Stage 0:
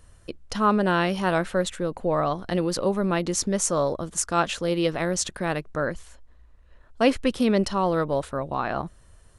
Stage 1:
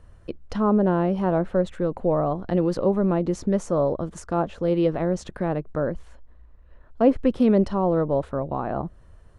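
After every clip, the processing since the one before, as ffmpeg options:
-filter_complex "[0:a]lowpass=f=1200:p=1,acrossover=split=940[s0][s1];[s1]acompressor=threshold=0.00708:ratio=6[s2];[s0][s2]amix=inputs=2:normalize=0,volume=1.5"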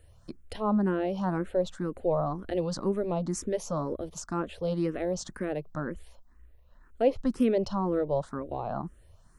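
-filter_complex "[0:a]crystalizer=i=3:c=0,asplit=2[s0][s1];[s1]afreqshift=2[s2];[s0][s2]amix=inputs=2:normalize=1,volume=0.631"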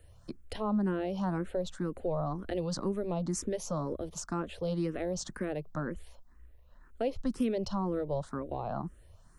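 -filter_complex "[0:a]acrossover=split=170|3000[s0][s1][s2];[s1]acompressor=threshold=0.0224:ratio=2.5[s3];[s0][s3][s2]amix=inputs=3:normalize=0"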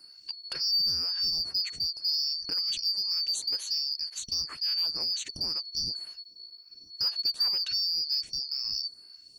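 -filter_complex "[0:a]afftfilt=real='real(if(lt(b,272),68*(eq(floor(b/68),0)*1+eq(floor(b/68),1)*2+eq(floor(b/68),2)*3+eq(floor(b/68),3)*0)+mod(b,68),b),0)':imag='imag(if(lt(b,272),68*(eq(floor(b/68),0)*1+eq(floor(b/68),1)*2+eq(floor(b/68),2)*3+eq(floor(b/68),3)*0)+mod(b,68),b),0)':win_size=2048:overlap=0.75,asplit=2[s0][s1];[s1]asoftclip=type=hard:threshold=0.0335,volume=0.473[s2];[s0][s2]amix=inputs=2:normalize=0"

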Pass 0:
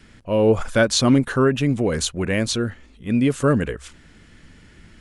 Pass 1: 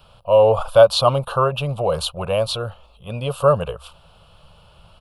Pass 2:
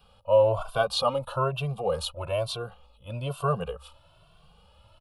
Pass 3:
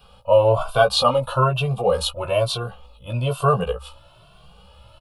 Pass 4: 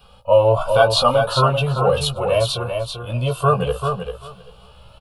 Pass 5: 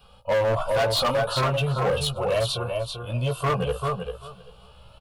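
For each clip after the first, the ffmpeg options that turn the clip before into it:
-af "firequalizer=gain_entry='entry(160,0);entry(260,-21);entry(550,11);entry(1200,10);entry(1900,-22);entry(2700,6);entry(4400,2);entry(6400,-13);entry(12000,11)':delay=0.05:min_phase=1,volume=0.841"
-filter_complex "[0:a]asplit=2[s0][s1];[s1]adelay=2.1,afreqshift=1.1[s2];[s0][s2]amix=inputs=2:normalize=1,volume=0.562"
-filter_complex "[0:a]asplit=2[s0][s1];[s1]adelay=16,volume=0.596[s2];[s0][s2]amix=inputs=2:normalize=0,volume=2.24"
-af "aecho=1:1:391|782|1173:0.501|0.0752|0.0113,volume=1.19"
-af "asoftclip=type=hard:threshold=0.178,volume=0.631"

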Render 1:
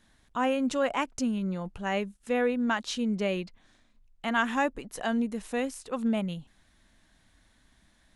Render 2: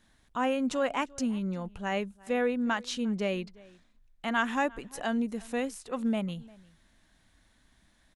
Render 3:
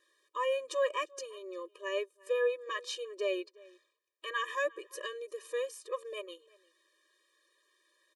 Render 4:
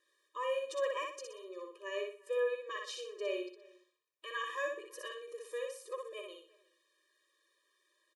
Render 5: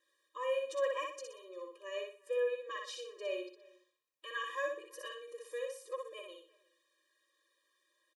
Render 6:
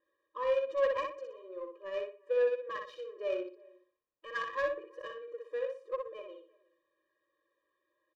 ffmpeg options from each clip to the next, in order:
-filter_complex "[0:a]asplit=2[s0][s1];[s1]adelay=349.9,volume=0.0708,highshelf=f=4000:g=-7.87[s2];[s0][s2]amix=inputs=2:normalize=0,volume=0.841"
-af "afftfilt=real='re*eq(mod(floor(b*sr/1024/320),2),1)':imag='im*eq(mod(floor(b*sr/1024/320),2),1)':win_size=1024:overlap=0.75"
-af "aecho=1:1:61|122|183|244:0.668|0.221|0.0728|0.024,volume=0.531"
-af "aecho=1:1:3.7:0.53,volume=0.75"
-af "adynamicsmooth=sensitivity=3.5:basefreq=1300,volume=1.78"

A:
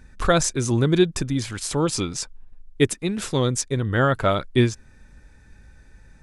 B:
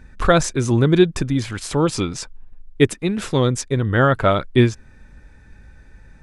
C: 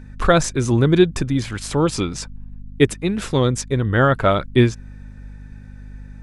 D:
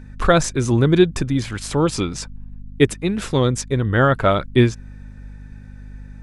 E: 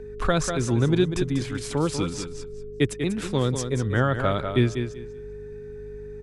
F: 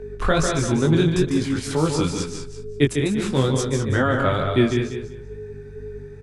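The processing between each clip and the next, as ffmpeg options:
-af "bass=f=250:g=0,treble=f=4000:g=-7,volume=1.58"
-af "aeval=exprs='val(0)+0.0158*(sin(2*PI*50*n/s)+sin(2*PI*2*50*n/s)/2+sin(2*PI*3*50*n/s)/3+sin(2*PI*4*50*n/s)/4+sin(2*PI*5*50*n/s)/5)':c=same"
-af anull
-filter_complex "[0:a]aecho=1:1:193|386|579:0.355|0.071|0.0142,aeval=exprs='val(0)+0.0282*sin(2*PI*420*n/s)':c=same,acrossover=split=240|3000[s0][s1][s2];[s1]acompressor=threshold=0.141:ratio=2[s3];[s0][s3][s2]amix=inputs=3:normalize=0,volume=0.531"
-af "flanger=delay=18.5:depth=4.3:speed=2.2,aecho=1:1:149:0.501,volume=2"

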